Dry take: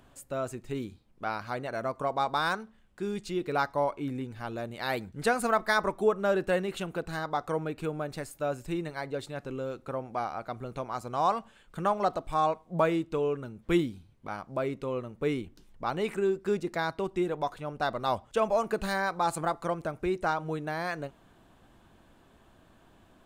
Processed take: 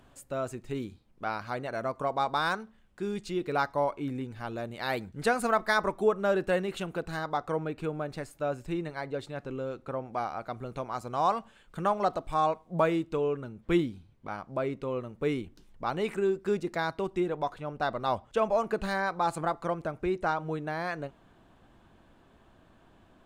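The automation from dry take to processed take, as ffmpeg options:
ffmpeg -i in.wav -af "asetnsamples=nb_out_samples=441:pad=0,asendcmd='7.38 lowpass f 4300;10.13 lowpass f 11000;13.17 lowpass f 4800;15.01 lowpass f 10000;17.2 lowpass f 4300',lowpass=frequency=10000:poles=1" out.wav

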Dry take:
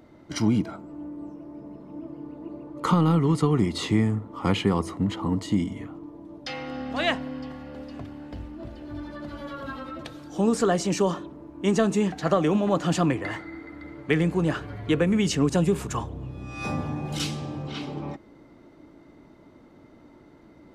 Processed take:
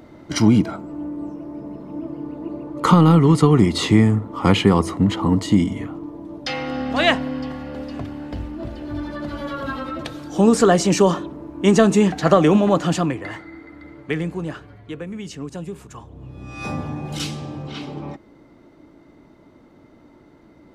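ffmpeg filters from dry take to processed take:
ffmpeg -i in.wav -af "volume=19.5dB,afade=type=out:start_time=12.55:duration=0.57:silence=0.398107,afade=type=out:start_time=13.95:duration=0.92:silence=0.334965,afade=type=in:start_time=16.02:duration=0.47:silence=0.266073" out.wav

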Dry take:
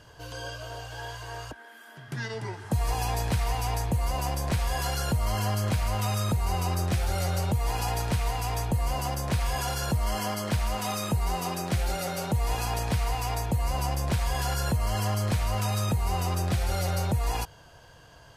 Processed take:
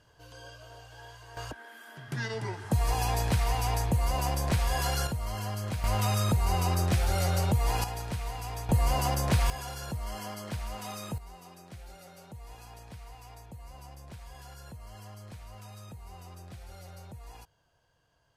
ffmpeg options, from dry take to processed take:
ffmpeg -i in.wav -af "asetnsamples=nb_out_samples=441:pad=0,asendcmd='1.37 volume volume 0dB;5.07 volume volume -7dB;5.84 volume volume 0.5dB;7.84 volume volume -7.5dB;8.69 volume volume 2dB;9.5 volume volume -9dB;11.18 volume volume -19.5dB',volume=-10.5dB" out.wav

